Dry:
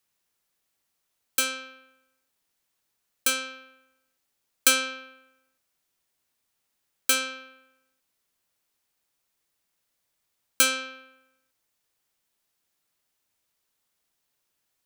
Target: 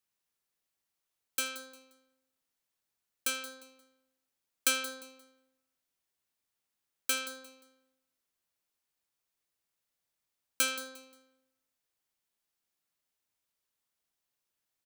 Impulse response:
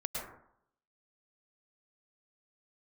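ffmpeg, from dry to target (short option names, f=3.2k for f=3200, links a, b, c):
-filter_complex "[0:a]aecho=1:1:176|352|528:0.188|0.0546|0.0158,asplit=2[a][b];[1:a]atrim=start_sample=2205,adelay=78[c];[b][c]afir=irnorm=-1:irlink=0,volume=-23dB[d];[a][d]amix=inputs=2:normalize=0,volume=-8.5dB"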